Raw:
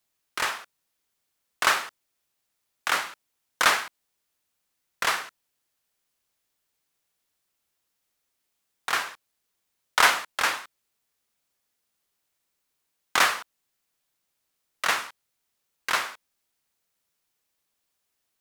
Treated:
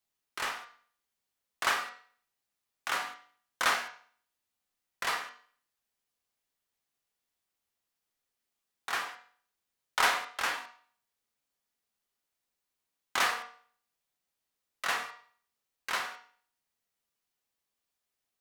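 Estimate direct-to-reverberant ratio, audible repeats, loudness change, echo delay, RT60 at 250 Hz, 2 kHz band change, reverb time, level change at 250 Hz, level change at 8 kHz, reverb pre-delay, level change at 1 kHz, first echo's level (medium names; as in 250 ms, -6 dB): 2.0 dB, no echo, -7.0 dB, no echo, 0.45 s, -7.0 dB, 0.50 s, -6.5 dB, -8.0 dB, 4 ms, -6.0 dB, no echo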